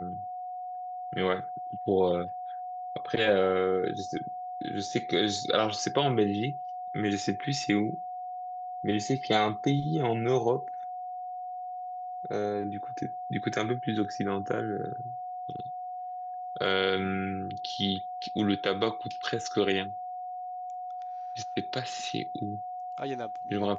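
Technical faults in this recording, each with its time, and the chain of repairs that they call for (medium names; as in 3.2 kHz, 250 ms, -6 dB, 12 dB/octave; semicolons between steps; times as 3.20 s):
whine 730 Hz -35 dBFS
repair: band-stop 730 Hz, Q 30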